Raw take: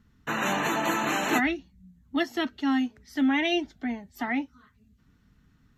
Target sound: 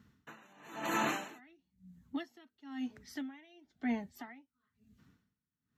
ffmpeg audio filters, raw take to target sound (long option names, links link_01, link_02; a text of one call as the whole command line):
ffmpeg -i in.wav -af "highpass=100,alimiter=limit=-22dB:level=0:latency=1:release=151,aeval=exprs='val(0)*pow(10,-31*(0.5-0.5*cos(2*PI*1*n/s))/20)':channel_layout=same,volume=1dB" out.wav